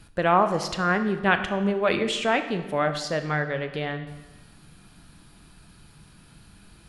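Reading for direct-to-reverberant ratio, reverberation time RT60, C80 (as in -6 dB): 8.0 dB, 1.2 s, 11.5 dB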